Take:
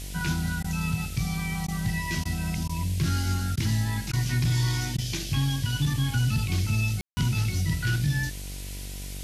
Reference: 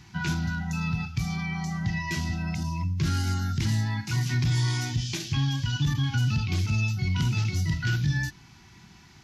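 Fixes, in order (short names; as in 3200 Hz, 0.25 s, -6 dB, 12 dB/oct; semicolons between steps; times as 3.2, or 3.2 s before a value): de-hum 48 Hz, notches 16; room tone fill 7.01–7.17; interpolate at 0.63/1.67/2.24/2.68/3.56/4.12/4.97, 11 ms; noise print and reduce 14 dB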